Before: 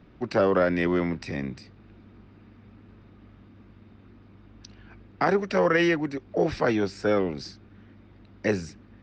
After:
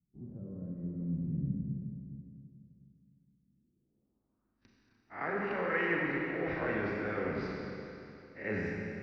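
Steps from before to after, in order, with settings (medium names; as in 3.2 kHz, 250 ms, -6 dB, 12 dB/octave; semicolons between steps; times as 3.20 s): reverse spectral sustain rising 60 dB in 0.32 s; gate -42 dBFS, range -28 dB; reverse; compression 6:1, threshold -31 dBFS, peak gain reduction 14 dB; reverse; low-pass sweep 160 Hz -> 2 kHz, 3.33–4.65 s; Schroeder reverb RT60 2.9 s, combs from 29 ms, DRR -2.5 dB; trim -5 dB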